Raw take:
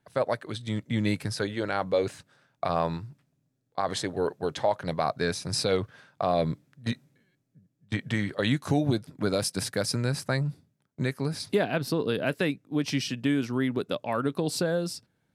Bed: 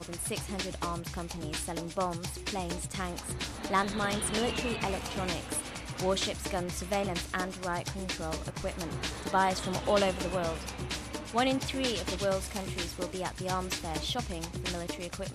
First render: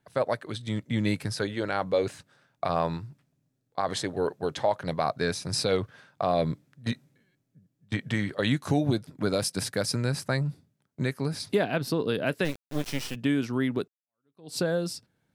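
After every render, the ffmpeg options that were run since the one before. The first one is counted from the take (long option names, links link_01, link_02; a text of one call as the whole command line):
ffmpeg -i in.wav -filter_complex "[0:a]asplit=3[link_01][link_02][link_03];[link_01]afade=type=out:start_time=12.44:duration=0.02[link_04];[link_02]acrusher=bits=4:dc=4:mix=0:aa=0.000001,afade=type=in:start_time=12.44:duration=0.02,afade=type=out:start_time=13.14:duration=0.02[link_05];[link_03]afade=type=in:start_time=13.14:duration=0.02[link_06];[link_04][link_05][link_06]amix=inputs=3:normalize=0,asplit=2[link_07][link_08];[link_07]atrim=end=13.88,asetpts=PTS-STARTPTS,afade=type=out:start_time=13.876:duration=0.004:curve=hsin[link_09];[link_08]atrim=start=13.88,asetpts=PTS-STARTPTS,afade=type=in:duration=0.7:curve=exp[link_10];[link_09][link_10]concat=n=2:v=0:a=1" out.wav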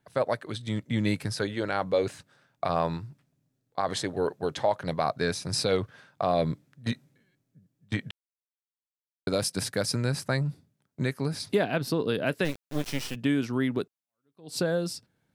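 ffmpeg -i in.wav -filter_complex "[0:a]asplit=3[link_01][link_02][link_03];[link_01]atrim=end=8.11,asetpts=PTS-STARTPTS,afade=type=out:start_time=8.106:duration=0.004:curve=hsin[link_04];[link_02]atrim=start=8.11:end=9.27,asetpts=PTS-STARTPTS,volume=0[link_05];[link_03]atrim=start=9.27,asetpts=PTS-STARTPTS,afade=type=in:duration=0.004:curve=hsin[link_06];[link_04][link_05][link_06]concat=n=3:v=0:a=1" out.wav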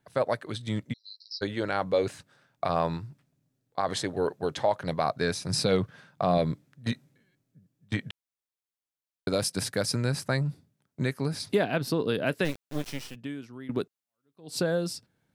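ffmpeg -i in.wav -filter_complex "[0:a]asplit=3[link_01][link_02][link_03];[link_01]afade=type=out:start_time=0.92:duration=0.02[link_04];[link_02]asuperpass=centerf=4700:order=20:qfactor=2.7,afade=type=in:start_time=0.92:duration=0.02,afade=type=out:start_time=1.41:duration=0.02[link_05];[link_03]afade=type=in:start_time=1.41:duration=0.02[link_06];[link_04][link_05][link_06]amix=inputs=3:normalize=0,asettb=1/sr,asplit=3[link_07][link_08][link_09];[link_07]atrim=end=5.494[link_10];[link_08]atrim=start=5.49:end=6.38,asetpts=PTS-STARTPTS,afade=type=in:duration=0.004:curve=qsin,afade=type=out:start_time=0.886:duration=0.004:curve=qsin,equalizer=frequency=170:width_type=o:width=0.77:gain=7.5[link_11];[link_09]atrim=start=6.376[link_12];[link_10][link_11]acrossfade=duration=0.004:curve1=hsin:curve2=qsin[link_13];[link_13][link_12]acrossfade=duration=0.004:curve1=qsin:curve2=hsin,asplit=2[link_14][link_15];[link_14]atrim=end=13.69,asetpts=PTS-STARTPTS,afade=type=out:start_time=12.64:duration=1.05:curve=qua:silence=0.158489[link_16];[link_15]atrim=start=13.69,asetpts=PTS-STARTPTS,afade=type=in:duration=0.004:curve=hsin:silence=0.158489[link_17];[link_16][link_17]concat=n=2:v=0:a=1" out.wav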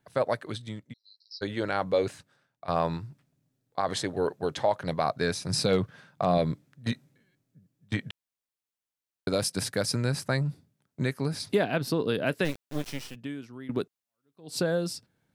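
ffmpeg -i in.wav -filter_complex "[0:a]asettb=1/sr,asplit=3[link_01][link_02][link_03];[link_01]atrim=end=5.094[link_04];[link_02]atrim=start=5.09:end=6.26,asetpts=PTS-STARTPTS,afade=type=in:duration=0.004:curve=qsin,afade=type=out:start_time=1.166:duration=0.004:curve=qsin,asoftclip=type=hard:threshold=-14dB[link_05];[link_03]atrim=start=6.256[link_06];[link_04][link_05]acrossfade=duration=0.004:curve1=hsin:curve2=qsin[link_07];[link_07][link_06]acrossfade=duration=0.004:curve1=qsin:curve2=hsin,asplit=4[link_08][link_09][link_10][link_11];[link_08]atrim=end=0.77,asetpts=PTS-STARTPTS,afade=type=out:start_time=0.51:duration=0.26:silence=0.298538[link_12];[link_09]atrim=start=0.77:end=1.25,asetpts=PTS-STARTPTS,volume=-10.5dB[link_13];[link_10]atrim=start=1.25:end=2.68,asetpts=PTS-STARTPTS,afade=type=in:duration=0.26:silence=0.298538,afade=type=out:start_time=0.77:duration=0.66:silence=0.105925[link_14];[link_11]atrim=start=2.68,asetpts=PTS-STARTPTS,afade=type=in:duration=0.004:curve=hsin:silence=0.105925[link_15];[link_12][link_13][link_14][link_15]concat=n=4:v=0:a=1" out.wav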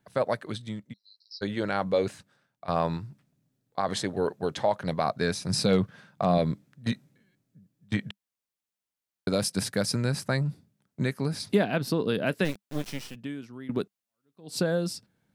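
ffmpeg -i in.wav -af "equalizer=frequency=200:width=4.9:gain=6.5" out.wav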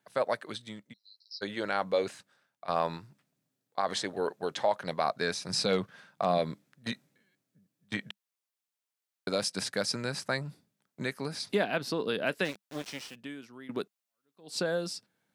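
ffmpeg -i in.wav -filter_complex "[0:a]highpass=frequency=530:poles=1,acrossover=split=8800[link_01][link_02];[link_02]acompressor=threshold=-57dB:ratio=4:attack=1:release=60[link_03];[link_01][link_03]amix=inputs=2:normalize=0" out.wav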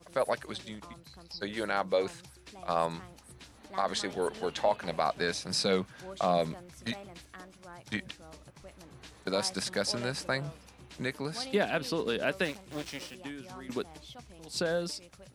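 ffmpeg -i in.wav -i bed.wav -filter_complex "[1:a]volume=-15.5dB[link_01];[0:a][link_01]amix=inputs=2:normalize=0" out.wav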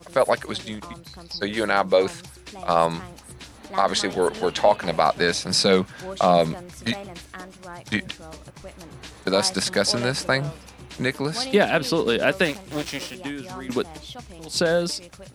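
ffmpeg -i in.wav -af "volume=10dB" out.wav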